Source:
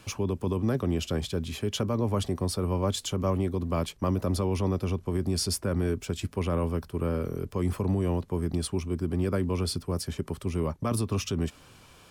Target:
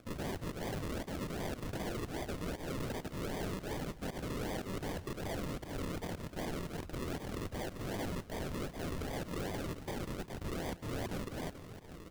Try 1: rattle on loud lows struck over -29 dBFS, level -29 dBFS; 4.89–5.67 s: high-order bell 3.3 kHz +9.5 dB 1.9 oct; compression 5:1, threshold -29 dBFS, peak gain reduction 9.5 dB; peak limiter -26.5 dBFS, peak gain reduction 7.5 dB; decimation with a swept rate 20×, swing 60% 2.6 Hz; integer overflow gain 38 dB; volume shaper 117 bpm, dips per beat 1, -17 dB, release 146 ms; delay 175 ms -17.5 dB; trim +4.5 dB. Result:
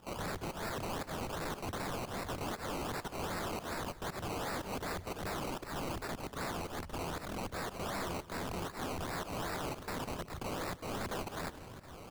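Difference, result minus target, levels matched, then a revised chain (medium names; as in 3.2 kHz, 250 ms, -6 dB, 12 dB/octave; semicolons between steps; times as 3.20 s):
decimation with a swept rate: distortion -5 dB
rattle on loud lows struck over -29 dBFS, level -29 dBFS; 4.89–5.67 s: high-order bell 3.3 kHz +9.5 dB 1.9 oct; compression 5:1, threshold -29 dBFS, peak gain reduction 9.5 dB; peak limiter -26.5 dBFS, peak gain reduction 7.5 dB; decimation with a swept rate 45×, swing 60% 2.6 Hz; integer overflow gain 38 dB; volume shaper 117 bpm, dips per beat 1, -17 dB, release 146 ms; delay 175 ms -17.5 dB; trim +4.5 dB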